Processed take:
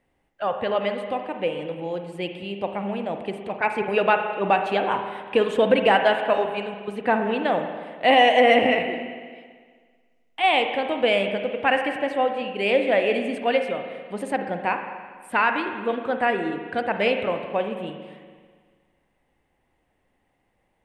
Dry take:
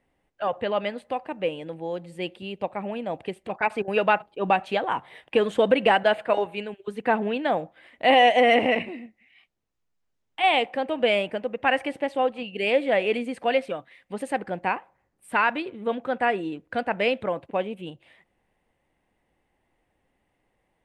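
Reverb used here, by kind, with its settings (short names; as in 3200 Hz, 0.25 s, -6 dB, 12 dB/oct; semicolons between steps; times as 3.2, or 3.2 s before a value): spring tank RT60 1.7 s, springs 40/55 ms, chirp 50 ms, DRR 5.5 dB; gain +1 dB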